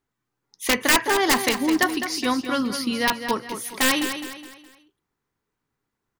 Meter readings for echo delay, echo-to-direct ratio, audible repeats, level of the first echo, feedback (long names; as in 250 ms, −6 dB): 208 ms, −8.5 dB, 4, −9.0 dB, 39%